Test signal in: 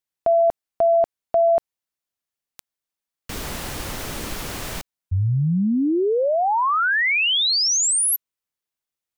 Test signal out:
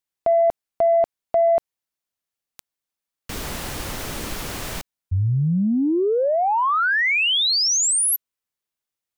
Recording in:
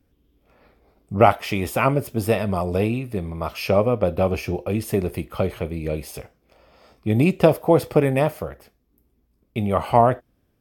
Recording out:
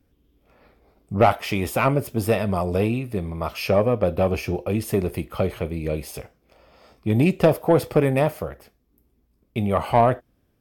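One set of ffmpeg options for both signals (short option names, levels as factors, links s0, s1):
-af "acontrast=46,volume=0.531"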